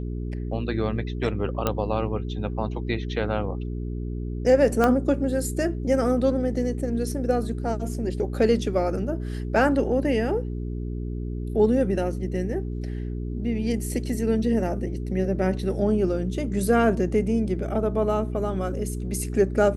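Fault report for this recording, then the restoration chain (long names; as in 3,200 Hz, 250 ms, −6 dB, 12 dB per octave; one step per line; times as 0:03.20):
mains hum 60 Hz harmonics 7 −30 dBFS
0:01.67: click −9 dBFS
0:04.84: click −9 dBFS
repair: click removal
hum removal 60 Hz, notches 7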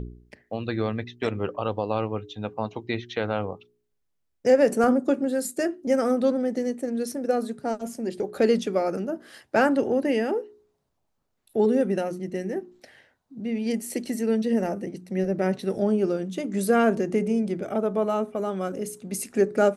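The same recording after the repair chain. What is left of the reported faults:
0:04.84: click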